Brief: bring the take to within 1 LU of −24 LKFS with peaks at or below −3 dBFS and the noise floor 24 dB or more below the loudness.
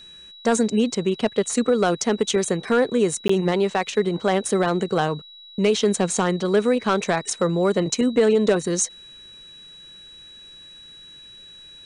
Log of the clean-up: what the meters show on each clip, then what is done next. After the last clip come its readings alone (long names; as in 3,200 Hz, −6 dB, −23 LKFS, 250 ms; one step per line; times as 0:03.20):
number of dropouts 1; longest dropout 14 ms; interfering tone 3,900 Hz; level of the tone −42 dBFS; integrated loudness −21.5 LKFS; sample peak −9.5 dBFS; target loudness −24.0 LKFS
→ repair the gap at 0:03.28, 14 ms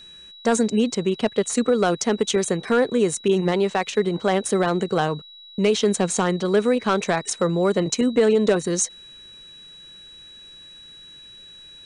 number of dropouts 0; interfering tone 3,900 Hz; level of the tone −42 dBFS
→ notch filter 3,900 Hz, Q 30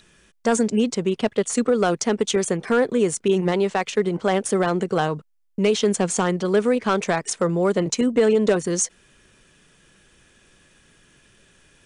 interfering tone none found; integrated loudness −21.5 LKFS; sample peak −9.5 dBFS; target loudness −24.0 LKFS
→ level −2.5 dB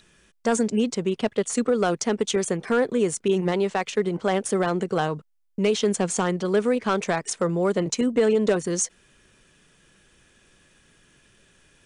integrated loudness −24.0 LKFS; sample peak −12.0 dBFS; background noise floor −62 dBFS